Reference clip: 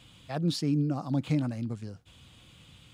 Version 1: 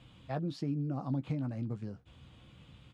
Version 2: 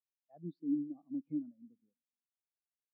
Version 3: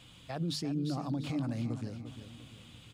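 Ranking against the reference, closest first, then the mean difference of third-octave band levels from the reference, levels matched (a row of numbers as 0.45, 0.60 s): 1, 3, 2; 4.5, 6.0, 15.5 dB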